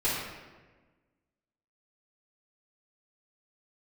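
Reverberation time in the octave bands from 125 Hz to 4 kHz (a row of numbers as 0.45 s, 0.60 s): 1.6 s, 1.6 s, 1.4 s, 1.2 s, 1.2 s, 0.90 s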